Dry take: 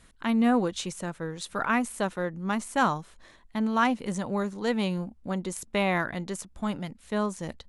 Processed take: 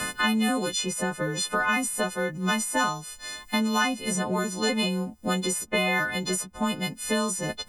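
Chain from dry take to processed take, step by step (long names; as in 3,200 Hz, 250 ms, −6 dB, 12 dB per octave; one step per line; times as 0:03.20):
every partial snapped to a pitch grid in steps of 3 semitones
multiband upward and downward compressor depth 100%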